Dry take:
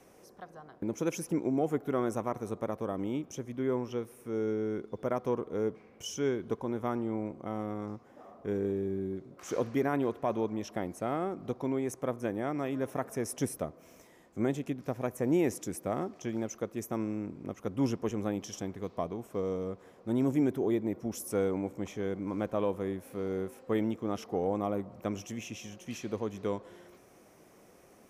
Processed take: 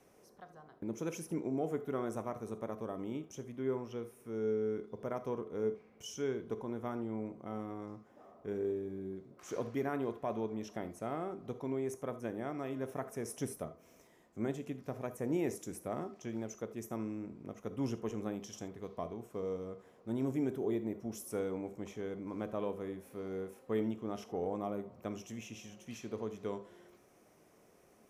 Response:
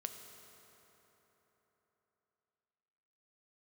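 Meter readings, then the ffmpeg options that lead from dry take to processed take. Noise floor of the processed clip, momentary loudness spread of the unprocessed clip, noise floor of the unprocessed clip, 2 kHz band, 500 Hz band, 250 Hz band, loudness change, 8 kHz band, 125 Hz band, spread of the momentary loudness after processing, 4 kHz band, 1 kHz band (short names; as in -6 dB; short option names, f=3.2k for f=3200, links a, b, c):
-65 dBFS, 9 LU, -59 dBFS, -6.0 dB, -5.0 dB, -6.5 dB, -5.5 dB, -6.0 dB, -6.0 dB, 10 LU, -6.5 dB, -6.0 dB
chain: -filter_complex "[1:a]atrim=start_sample=2205,atrim=end_sample=3969[a];[0:a][a]afir=irnorm=-1:irlink=0,volume=-3.5dB"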